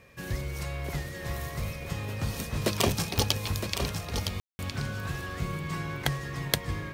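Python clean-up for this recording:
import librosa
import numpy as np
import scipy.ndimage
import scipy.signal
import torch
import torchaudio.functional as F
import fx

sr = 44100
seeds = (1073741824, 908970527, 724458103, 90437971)

y = fx.fix_declick_ar(x, sr, threshold=10.0)
y = fx.notch(y, sr, hz=2400.0, q=30.0)
y = fx.fix_ambience(y, sr, seeds[0], print_start_s=0.0, print_end_s=0.5, start_s=4.4, end_s=4.59)
y = fx.fix_echo_inverse(y, sr, delay_ms=963, level_db=-7.5)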